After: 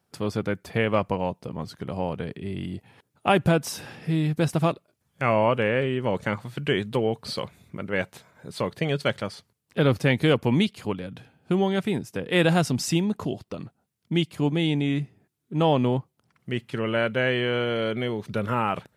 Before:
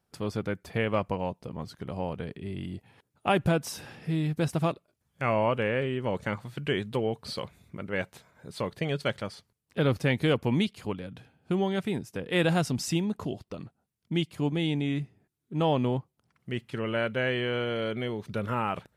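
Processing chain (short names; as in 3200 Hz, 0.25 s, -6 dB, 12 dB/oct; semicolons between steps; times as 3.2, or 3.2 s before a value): HPF 78 Hz; gain +4.5 dB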